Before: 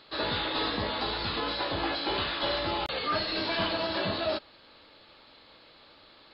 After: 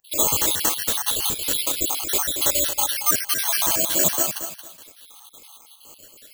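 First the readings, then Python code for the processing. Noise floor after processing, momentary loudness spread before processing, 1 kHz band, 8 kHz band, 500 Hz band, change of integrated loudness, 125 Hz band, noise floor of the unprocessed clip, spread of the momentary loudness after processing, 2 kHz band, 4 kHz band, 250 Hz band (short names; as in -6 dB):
-50 dBFS, 2 LU, +0.5 dB, n/a, +0.5 dB, +10.0 dB, 0.0 dB, -56 dBFS, 4 LU, +1.0 dB, +4.0 dB, 0.0 dB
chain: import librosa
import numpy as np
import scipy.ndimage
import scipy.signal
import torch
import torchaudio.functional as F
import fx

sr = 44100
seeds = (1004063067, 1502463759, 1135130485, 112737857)

p1 = fx.spec_dropout(x, sr, seeds[0], share_pct=70)
p2 = np.clip(p1, -10.0 ** (-24.5 / 20.0), 10.0 ** (-24.5 / 20.0))
p3 = p2 + fx.echo_feedback(p2, sr, ms=227, feedback_pct=26, wet_db=-9.0, dry=0)
p4 = (np.kron(p3[::6], np.eye(6)[0]) * 6)[:len(p3)]
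y = p4 * 10.0 ** (5.5 / 20.0)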